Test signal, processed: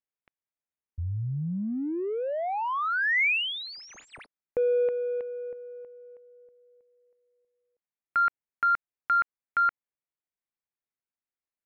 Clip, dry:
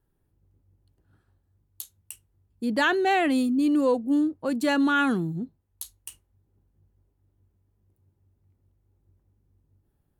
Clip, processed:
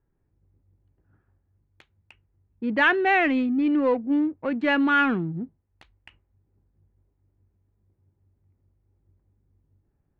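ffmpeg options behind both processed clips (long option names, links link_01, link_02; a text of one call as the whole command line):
ffmpeg -i in.wav -af "adynamicsmooth=sensitivity=7:basefreq=1700,lowpass=frequency=2300:width_type=q:width=2.4" out.wav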